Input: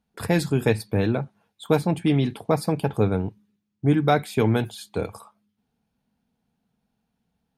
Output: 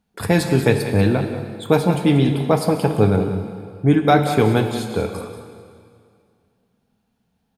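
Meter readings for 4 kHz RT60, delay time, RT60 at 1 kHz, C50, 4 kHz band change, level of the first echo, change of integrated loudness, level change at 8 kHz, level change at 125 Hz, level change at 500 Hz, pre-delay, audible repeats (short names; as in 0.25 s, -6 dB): 2.1 s, 0.187 s, 2.2 s, 6.0 dB, +6.0 dB, -11.5 dB, +5.5 dB, +5.5 dB, +5.5 dB, +5.5 dB, 5 ms, 1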